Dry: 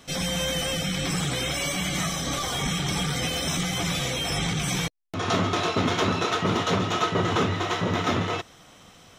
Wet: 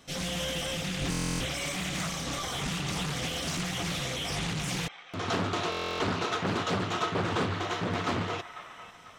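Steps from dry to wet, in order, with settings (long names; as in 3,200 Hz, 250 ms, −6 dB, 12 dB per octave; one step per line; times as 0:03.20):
0:01.01–0:01.46: low-shelf EQ 160 Hz +9 dB
delay with a band-pass on its return 495 ms, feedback 42%, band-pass 1,500 Hz, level −10.5 dB
buffer that repeats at 0:01.10/0:05.70, samples 1,024, times 12
highs frequency-modulated by the lows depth 0.51 ms
level −5.5 dB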